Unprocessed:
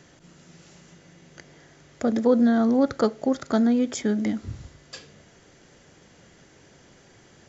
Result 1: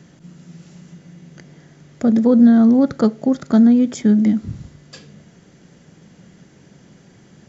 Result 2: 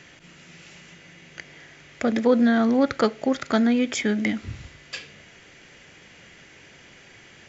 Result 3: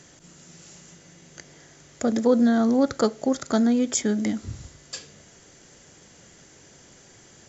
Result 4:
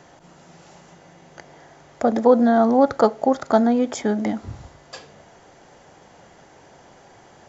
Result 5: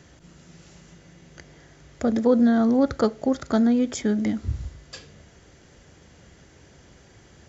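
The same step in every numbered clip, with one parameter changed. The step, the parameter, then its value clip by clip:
parametric band, centre frequency: 180, 2,400, 9,000, 810, 61 Hertz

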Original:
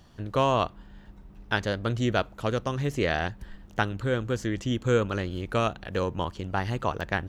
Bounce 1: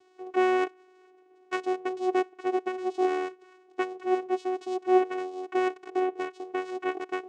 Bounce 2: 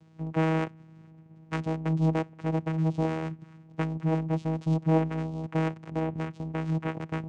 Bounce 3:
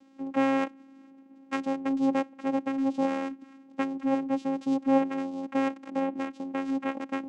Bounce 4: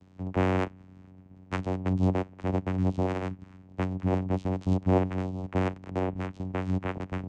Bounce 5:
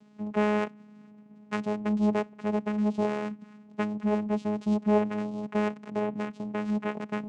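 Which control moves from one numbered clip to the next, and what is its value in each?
channel vocoder, frequency: 370, 160, 270, 93, 210 Hertz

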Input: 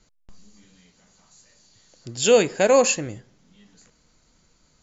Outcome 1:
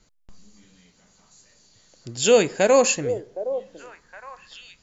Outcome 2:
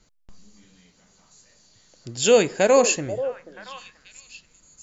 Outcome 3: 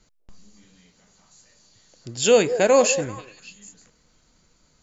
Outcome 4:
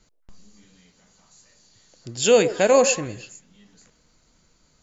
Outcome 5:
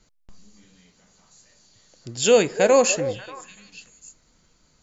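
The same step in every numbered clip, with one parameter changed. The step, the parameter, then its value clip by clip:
echo through a band-pass that steps, delay time: 765, 484, 194, 112, 294 milliseconds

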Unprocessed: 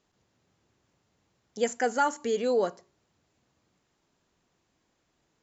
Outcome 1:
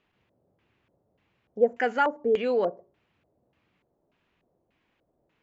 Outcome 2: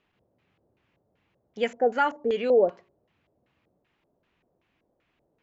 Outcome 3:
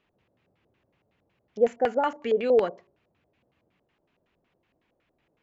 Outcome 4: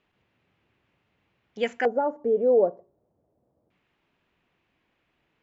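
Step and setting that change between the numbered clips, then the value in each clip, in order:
auto-filter low-pass, speed: 1.7, 2.6, 5.4, 0.27 Hertz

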